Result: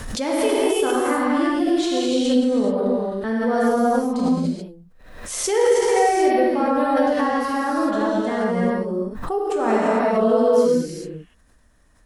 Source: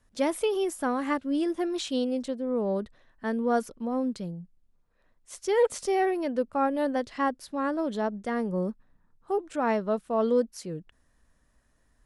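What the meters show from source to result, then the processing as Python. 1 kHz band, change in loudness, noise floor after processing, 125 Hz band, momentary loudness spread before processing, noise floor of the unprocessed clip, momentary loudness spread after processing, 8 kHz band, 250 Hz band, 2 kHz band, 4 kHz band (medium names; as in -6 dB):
+9.5 dB, +8.5 dB, -55 dBFS, +8.5 dB, 11 LU, -67 dBFS, 9 LU, +12.0 dB, +9.0 dB, +9.0 dB, +10.0 dB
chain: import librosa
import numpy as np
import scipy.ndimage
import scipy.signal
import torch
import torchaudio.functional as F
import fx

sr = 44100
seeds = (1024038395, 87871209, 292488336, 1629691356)

y = fx.rev_gated(x, sr, seeds[0], gate_ms=460, shape='flat', drr_db=-7.5)
y = fx.pre_swell(y, sr, db_per_s=50.0)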